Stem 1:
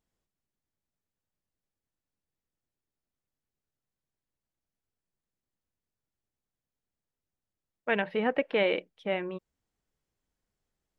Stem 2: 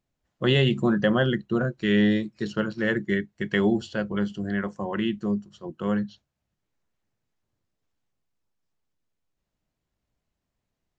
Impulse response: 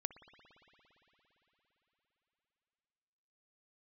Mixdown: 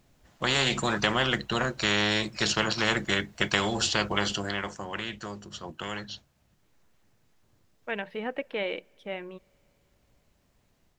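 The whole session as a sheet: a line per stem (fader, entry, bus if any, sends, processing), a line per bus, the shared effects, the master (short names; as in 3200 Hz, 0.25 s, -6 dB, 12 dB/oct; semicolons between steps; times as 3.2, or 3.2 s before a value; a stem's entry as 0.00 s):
-10.5 dB, 0.00 s, send -19 dB, high shelf 4700 Hz +11 dB
4.32 s -5 dB -> 4.75 s -13 dB, 0.00 s, no send, spectral compressor 4:1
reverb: on, RT60 4.2 s, pre-delay 57 ms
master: AGC gain up to 4 dB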